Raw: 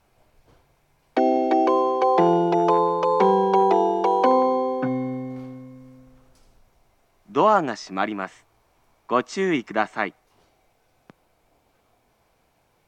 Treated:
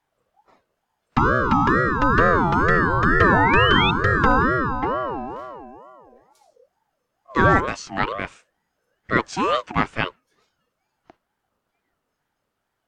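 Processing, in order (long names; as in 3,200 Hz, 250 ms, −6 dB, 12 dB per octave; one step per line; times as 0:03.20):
sound drawn into the spectrogram rise, 0:02.92–0:03.91, 560–3,200 Hz −23 dBFS
noise reduction from a noise print of the clip's start 13 dB
ring modulator whose carrier an LFO sweeps 690 Hz, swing 30%, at 2.2 Hz
level +4 dB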